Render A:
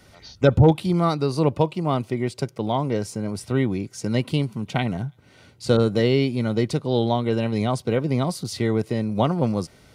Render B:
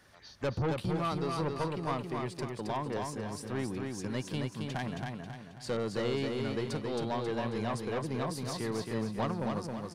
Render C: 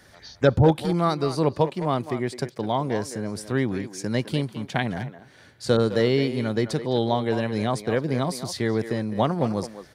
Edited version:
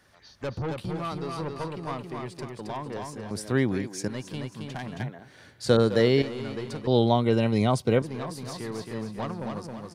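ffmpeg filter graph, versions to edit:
-filter_complex "[2:a]asplit=2[s0][s1];[1:a]asplit=4[s2][s3][s4][s5];[s2]atrim=end=3.312[s6];[s0]atrim=start=3.308:end=4.082[s7];[s3]atrim=start=4.078:end=5.002[s8];[s1]atrim=start=4.998:end=6.222[s9];[s4]atrim=start=6.218:end=6.872[s10];[0:a]atrim=start=6.868:end=8.022[s11];[s5]atrim=start=8.018[s12];[s6][s7]acrossfade=d=0.004:c1=hsin:c2=hsin[s13];[s13][s8]acrossfade=d=0.004:c1=hsin:c2=hsin[s14];[s14][s9]acrossfade=d=0.004:c1=hsin:c2=hsin[s15];[s15][s10]acrossfade=d=0.004:c1=hsin:c2=hsin[s16];[s16][s11]acrossfade=d=0.004:c1=hsin:c2=hsin[s17];[s17][s12]acrossfade=d=0.004:c1=hsin:c2=hsin"

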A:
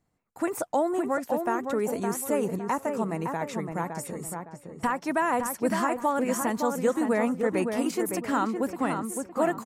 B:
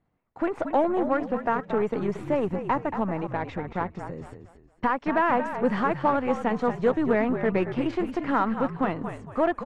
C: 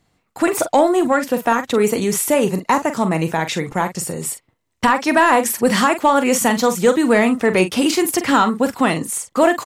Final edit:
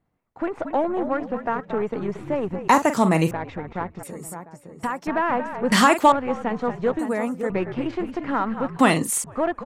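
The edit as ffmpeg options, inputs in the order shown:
-filter_complex "[2:a]asplit=3[s0][s1][s2];[0:a]asplit=2[s3][s4];[1:a]asplit=6[s5][s6][s7][s8][s9][s10];[s5]atrim=end=2.682[s11];[s0]atrim=start=2.678:end=3.312[s12];[s6]atrim=start=3.308:end=4.032[s13];[s3]atrim=start=4.028:end=5.072[s14];[s7]atrim=start=5.068:end=5.722[s15];[s1]atrim=start=5.718:end=6.122[s16];[s8]atrim=start=6.118:end=6.992[s17];[s4]atrim=start=6.988:end=7.502[s18];[s9]atrim=start=7.498:end=8.792[s19];[s2]atrim=start=8.788:end=9.242[s20];[s10]atrim=start=9.238[s21];[s11][s12]acrossfade=d=0.004:c1=hsin:c2=hsin[s22];[s22][s13]acrossfade=d=0.004:c1=hsin:c2=hsin[s23];[s23][s14]acrossfade=d=0.004:c1=hsin:c2=hsin[s24];[s24][s15]acrossfade=d=0.004:c1=hsin:c2=hsin[s25];[s25][s16]acrossfade=d=0.004:c1=hsin:c2=hsin[s26];[s26][s17]acrossfade=d=0.004:c1=hsin:c2=hsin[s27];[s27][s18]acrossfade=d=0.004:c1=hsin:c2=hsin[s28];[s28][s19]acrossfade=d=0.004:c1=hsin:c2=hsin[s29];[s29][s20]acrossfade=d=0.004:c1=hsin:c2=hsin[s30];[s30][s21]acrossfade=d=0.004:c1=hsin:c2=hsin"

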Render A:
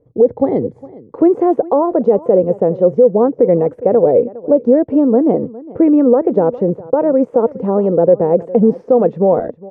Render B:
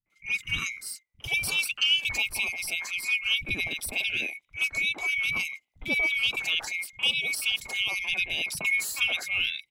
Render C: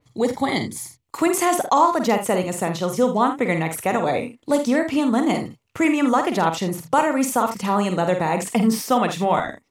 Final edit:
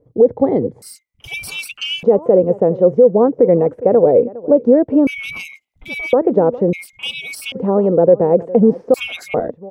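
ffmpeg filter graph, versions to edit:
-filter_complex "[1:a]asplit=4[s0][s1][s2][s3];[0:a]asplit=5[s4][s5][s6][s7][s8];[s4]atrim=end=0.822[s9];[s0]atrim=start=0.818:end=2.032[s10];[s5]atrim=start=2.028:end=5.072[s11];[s1]atrim=start=5.068:end=6.132[s12];[s6]atrim=start=6.128:end=6.732[s13];[s2]atrim=start=6.728:end=7.522[s14];[s7]atrim=start=7.518:end=8.942[s15];[s3]atrim=start=8.938:end=9.342[s16];[s8]atrim=start=9.338[s17];[s9][s10]acrossfade=d=0.004:c1=hsin:c2=hsin[s18];[s18][s11]acrossfade=d=0.004:c1=hsin:c2=hsin[s19];[s19][s12]acrossfade=d=0.004:c1=hsin:c2=hsin[s20];[s20][s13]acrossfade=d=0.004:c1=hsin:c2=hsin[s21];[s21][s14]acrossfade=d=0.004:c1=hsin:c2=hsin[s22];[s22][s15]acrossfade=d=0.004:c1=hsin:c2=hsin[s23];[s23][s16]acrossfade=d=0.004:c1=hsin:c2=hsin[s24];[s24][s17]acrossfade=d=0.004:c1=hsin:c2=hsin"

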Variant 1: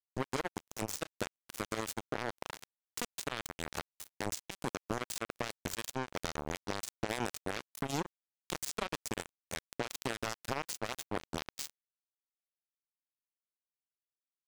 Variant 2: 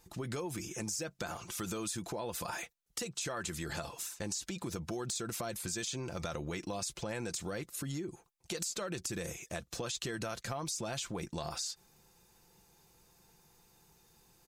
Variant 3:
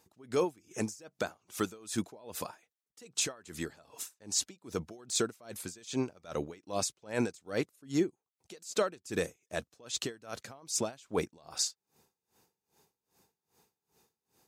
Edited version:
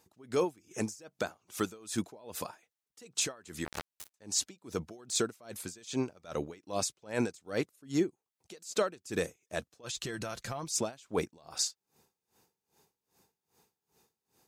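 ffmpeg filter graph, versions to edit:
-filter_complex "[2:a]asplit=3[s0][s1][s2];[s0]atrim=end=3.652[s3];[0:a]atrim=start=3.648:end=4.142[s4];[s1]atrim=start=4.138:end=9.89[s5];[1:a]atrim=start=9.83:end=10.7[s6];[s2]atrim=start=10.64[s7];[s3][s4]acrossfade=d=0.004:c1=hsin:c2=hsin[s8];[s8][s5]acrossfade=d=0.004:c1=hsin:c2=hsin[s9];[s9][s6]acrossfade=d=0.06:c1=tri:c2=tri[s10];[s10][s7]acrossfade=d=0.06:c1=tri:c2=tri"

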